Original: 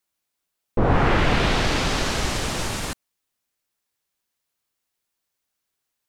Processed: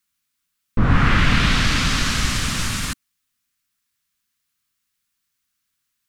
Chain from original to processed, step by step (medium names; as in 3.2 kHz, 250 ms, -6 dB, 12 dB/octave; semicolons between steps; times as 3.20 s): high-order bell 550 Hz -13 dB; trim +4.5 dB